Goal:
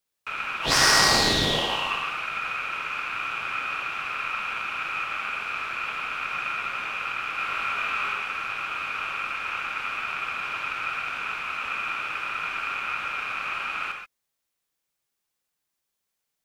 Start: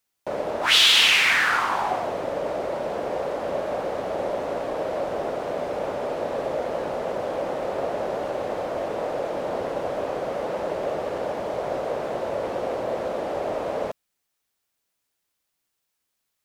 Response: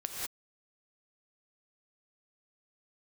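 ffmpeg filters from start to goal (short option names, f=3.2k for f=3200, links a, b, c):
-filter_complex "[0:a]aeval=exprs='0.596*(cos(1*acos(clip(val(0)/0.596,-1,1)))-cos(1*PI/2))+0.266*(cos(2*acos(clip(val(0)/0.596,-1,1)))-cos(2*PI/2))':c=same,aeval=exprs='val(0)*sin(2*PI*1900*n/s)':c=same,asettb=1/sr,asplit=3[a][b][c];[a]atrim=end=7.364[d];[b]atrim=start=7.36:end=8.13,asetpts=PTS-STARTPTS,afade=t=in:d=0.004:c=qsin,afade=t=out:st=0.766:d=0.004:c=qsin,asplit=2[e][f];[f]adelay=22,volume=-2dB[g];[e][g]amix=inputs=2:normalize=0,atrim=end_sample=33957[h];[c]atrim=start=8.126[i];[d][h]acrossfade=d=0.004:c1=hsin:c2=qsin[j];[j][i]acrossfade=d=0.004:c1=qsin:c2=hsin[k];[1:a]atrim=start_sample=2205,afade=t=out:st=0.19:d=0.01,atrim=end_sample=8820[l];[k][l]afir=irnorm=-1:irlink=0"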